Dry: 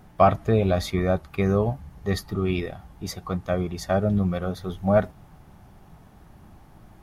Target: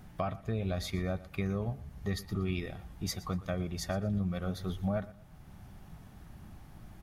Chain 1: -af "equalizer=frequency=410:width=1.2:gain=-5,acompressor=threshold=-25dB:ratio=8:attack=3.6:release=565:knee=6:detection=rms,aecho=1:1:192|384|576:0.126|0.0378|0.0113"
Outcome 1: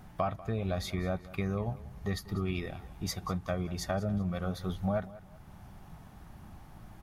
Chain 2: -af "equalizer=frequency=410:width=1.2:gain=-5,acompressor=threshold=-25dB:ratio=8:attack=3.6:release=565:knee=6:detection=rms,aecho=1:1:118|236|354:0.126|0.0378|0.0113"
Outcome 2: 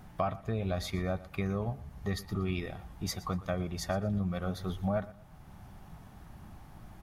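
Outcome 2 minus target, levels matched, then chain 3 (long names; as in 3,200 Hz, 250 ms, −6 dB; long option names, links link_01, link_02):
1,000 Hz band +3.0 dB
-af "equalizer=frequency=410:width=1.2:gain=-5,acompressor=threshold=-25dB:ratio=8:attack=3.6:release=565:knee=6:detection=rms,equalizer=frequency=920:width=1.2:gain=-5,aecho=1:1:118|236|354:0.126|0.0378|0.0113"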